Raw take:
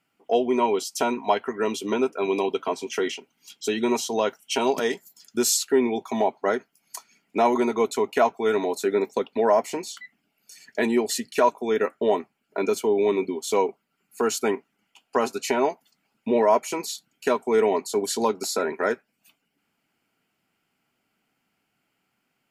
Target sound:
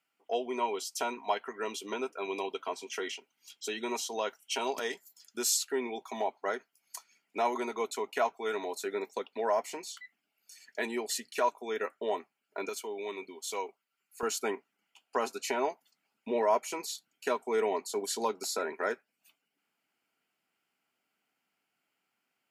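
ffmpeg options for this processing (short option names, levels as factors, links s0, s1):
-af "asetnsamples=n=441:p=0,asendcmd='12.69 highpass f 1500;14.23 highpass f 460',highpass=f=720:p=1,volume=0.501"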